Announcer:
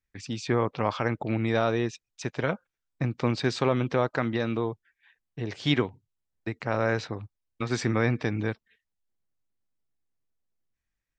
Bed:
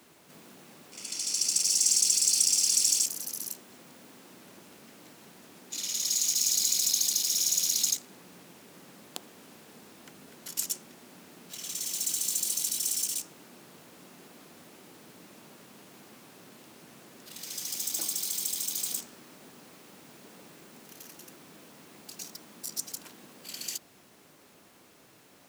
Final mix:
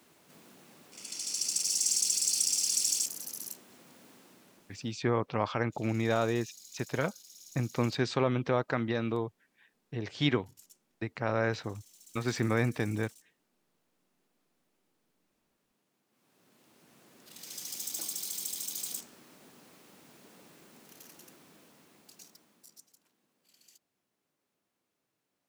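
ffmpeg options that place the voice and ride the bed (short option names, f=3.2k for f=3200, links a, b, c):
-filter_complex "[0:a]adelay=4550,volume=-3.5dB[a];[1:a]volume=16.5dB,afade=t=out:st=4.11:d=0.96:silence=0.0841395,afade=t=in:st=16.08:d=1.45:silence=0.0891251,afade=t=out:st=21.22:d=1.67:silence=0.0944061[b];[a][b]amix=inputs=2:normalize=0"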